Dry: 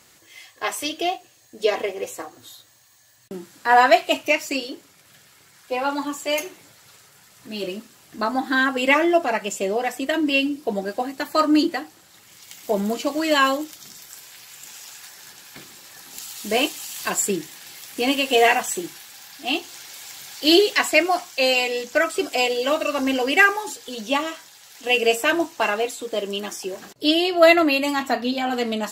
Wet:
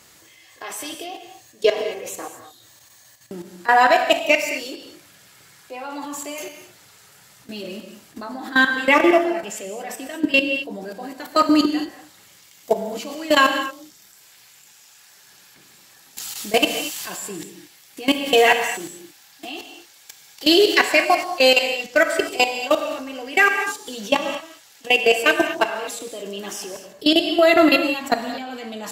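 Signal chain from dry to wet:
output level in coarse steps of 19 dB
reverb whose tail is shaped and stops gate 260 ms flat, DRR 5.5 dB
level +5.5 dB

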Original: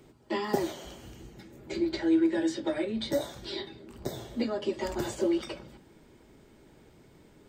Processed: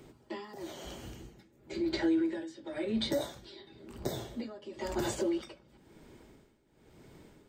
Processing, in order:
brickwall limiter −23.5 dBFS, peak gain reduction 10 dB
amplitude tremolo 0.98 Hz, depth 86%
level +2 dB

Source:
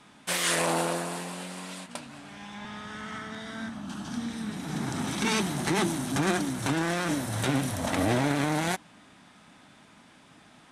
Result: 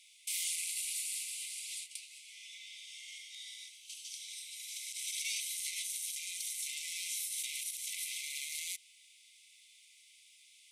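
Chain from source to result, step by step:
spectral tilt +4 dB per octave
brickwall limiter −18.5 dBFS, peak gain reduction 11.5 dB
linear-phase brick-wall high-pass 2,000 Hz
level −8 dB

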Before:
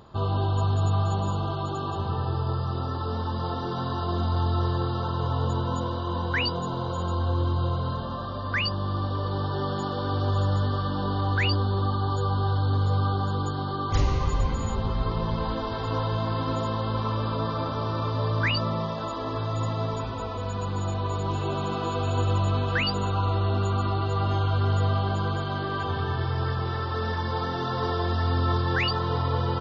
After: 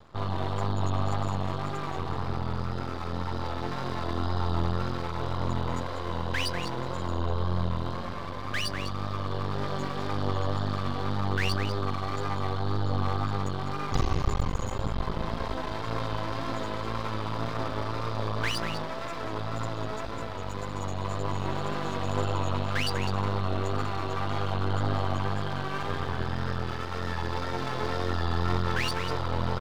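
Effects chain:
slap from a distant wall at 34 metres, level −7 dB
pitch vibrato 1.9 Hz 44 cents
half-wave rectification

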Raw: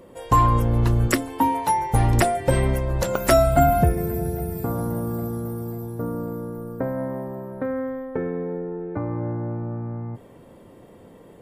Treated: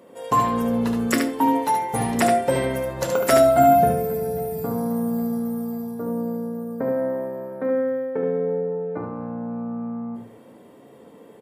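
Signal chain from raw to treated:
high-pass filter 180 Hz 12 dB per octave
mains-hum notches 50/100/150/200/250/300/350 Hz
single-tap delay 73 ms −5 dB
on a send at −6 dB: convolution reverb RT60 0.50 s, pre-delay 4 ms
on the sum: level −1.5 dB

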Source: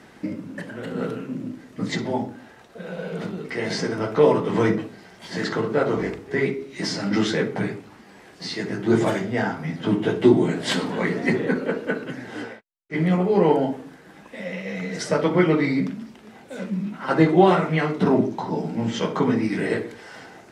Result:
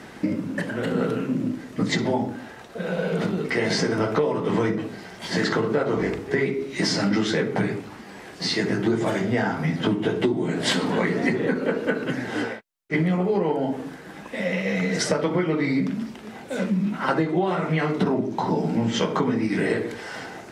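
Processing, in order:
downward compressor 16 to 1, threshold −25 dBFS, peak gain reduction 16.5 dB
level +6.5 dB

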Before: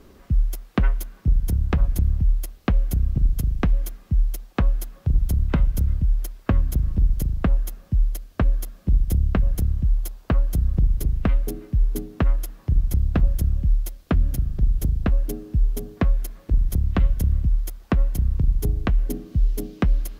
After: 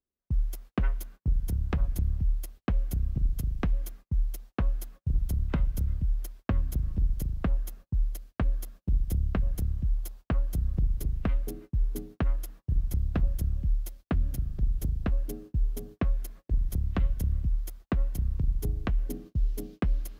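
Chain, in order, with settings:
noise gate −37 dBFS, range −38 dB
level −7.5 dB

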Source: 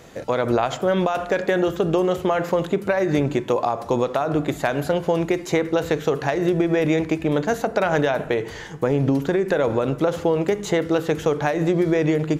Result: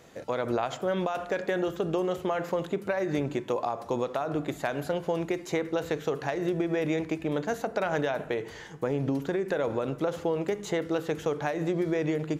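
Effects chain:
low-shelf EQ 86 Hz −6.5 dB
level −8 dB

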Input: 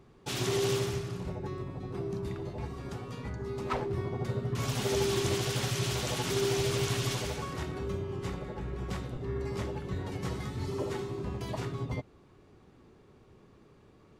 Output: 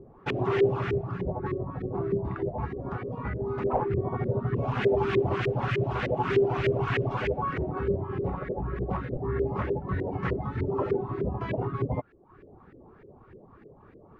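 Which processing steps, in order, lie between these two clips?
in parallel at 0 dB: brickwall limiter −25.5 dBFS, peak gain reduction 8 dB
on the sum: dynamic equaliser 2,600 Hz, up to +6 dB, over −50 dBFS, Q 2.7
auto-filter low-pass saw up 3.3 Hz 410–2,000 Hz
reverb reduction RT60 0.64 s

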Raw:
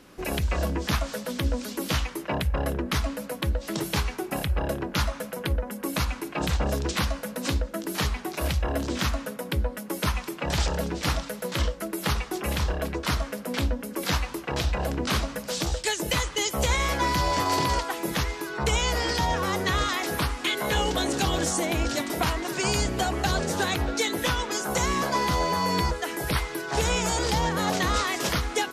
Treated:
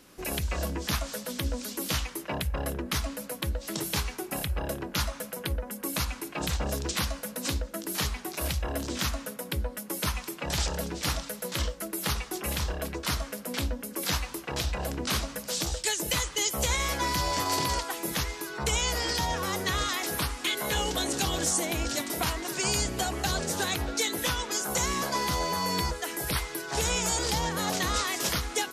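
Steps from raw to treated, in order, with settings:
high-shelf EQ 4,400 Hz +9.5 dB
level −5 dB

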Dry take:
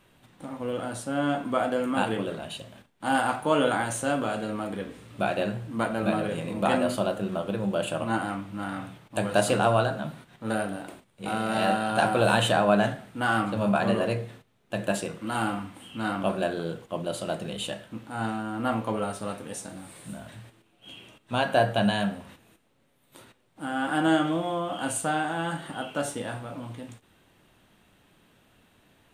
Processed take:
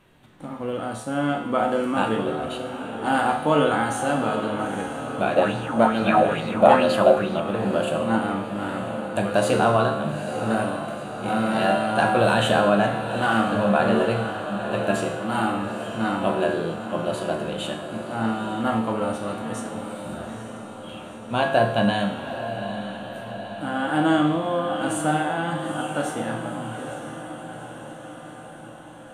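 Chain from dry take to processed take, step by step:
high-shelf EQ 3,800 Hz −7 dB
notch filter 5,100 Hz, Q 18
tuned comb filter 75 Hz, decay 0.94 s, harmonics all, mix 80%
feedback delay with all-pass diffusion 892 ms, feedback 63%, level −9.5 dB
boost into a limiter +20.5 dB
0:05.36–0:07.40: auto-filter bell 2.3 Hz 580–4,500 Hz +12 dB
level −6 dB

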